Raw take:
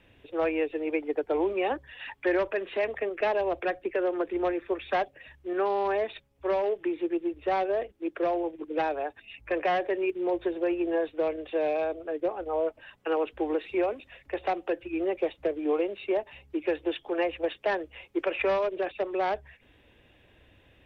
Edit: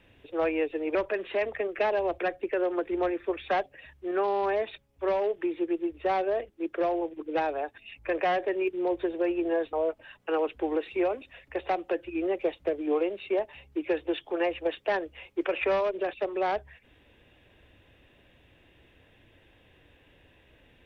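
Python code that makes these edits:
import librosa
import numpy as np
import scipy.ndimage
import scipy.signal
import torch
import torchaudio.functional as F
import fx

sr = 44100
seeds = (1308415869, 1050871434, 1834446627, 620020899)

y = fx.edit(x, sr, fx.cut(start_s=0.95, length_s=1.42),
    fx.cut(start_s=11.15, length_s=1.36), tone=tone)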